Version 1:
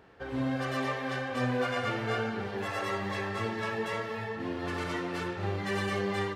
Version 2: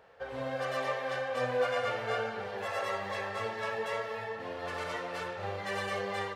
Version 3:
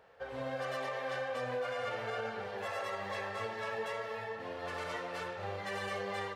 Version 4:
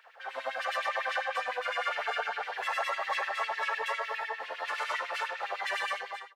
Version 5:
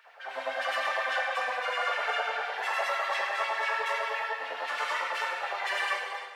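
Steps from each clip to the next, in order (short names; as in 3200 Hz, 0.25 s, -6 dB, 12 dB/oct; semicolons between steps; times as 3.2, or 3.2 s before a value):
resonant low shelf 410 Hz -7 dB, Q 3; gain -2 dB
limiter -26 dBFS, peak gain reduction 7 dB; gain -2.5 dB
ending faded out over 0.56 s; LFO high-pass sine 9.9 Hz 720–2700 Hz; gain +5 dB
reverb, pre-delay 3 ms, DRR 0.5 dB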